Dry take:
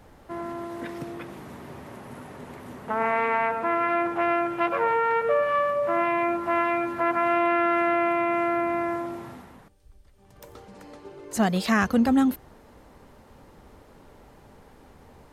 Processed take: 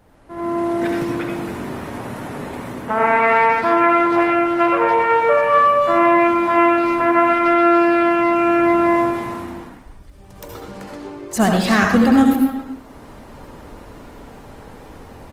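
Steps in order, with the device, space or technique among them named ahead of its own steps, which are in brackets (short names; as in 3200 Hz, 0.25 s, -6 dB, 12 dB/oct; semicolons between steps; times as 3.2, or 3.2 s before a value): speakerphone in a meeting room (reverb RT60 0.55 s, pre-delay 65 ms, DRR 1 dB; speakerphone echo 0.28 s, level -10 dB; AGC gain up to 11.5 dB; gain -1.5 dB; Opus 24 kbps 48000 Hz)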